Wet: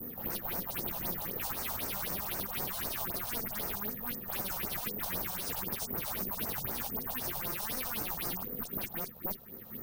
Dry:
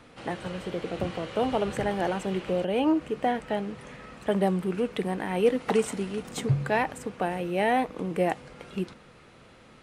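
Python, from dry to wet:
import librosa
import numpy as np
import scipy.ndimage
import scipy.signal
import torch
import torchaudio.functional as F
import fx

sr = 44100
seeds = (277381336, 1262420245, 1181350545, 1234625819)

y = fx.reverse_delay(x, sr, ms=411, wet_db=-8.5)
y = fx.env_lowpass_down(y, sr, base_hz=770.0, full_db=-20.0)
y = fx.small_body(y, sr, hz=(230.0, 380.0, 1800.0), ring_ms=30, db=11)
y = (np.mod(10.0 ** (23.5 / 20.0) * y + 1.0, 2.0) - 1.0) / 10.0 ** (23.5 / 20.0)
y = fx.tube_stage(y, sr, drive_db=28.0, bias=0.65)
y = fx.dispersion(y, sr, late='highs', ms=58.0, hz=3000.0)
y = fx.phaser_stages(y, sr, stages=4, low_hz=300.0, high_hz=3300.0, hz=3.9, feedback_pct=30)
y = (np.kron(scipy.signal.resample_poly(y, 1, 3), np.eye(3)[0]) * 3)[:len(y)]
y = fx.band_squash(y, sr, depth_pct=70)
y = y * librosa.db_to_amplitude(-5.5)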